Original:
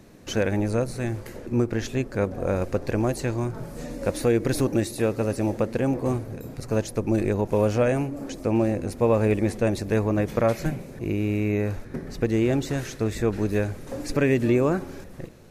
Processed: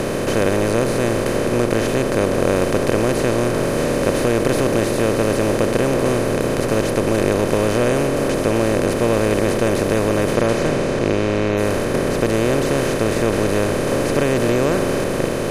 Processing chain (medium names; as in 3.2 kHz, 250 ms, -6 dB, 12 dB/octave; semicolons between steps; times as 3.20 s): spectral levelling over time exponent 0.2; 10.35–11.56 s: low-pass 11 kHz -> 4.8 kHz 12 dB/octave; trim -2.5 dB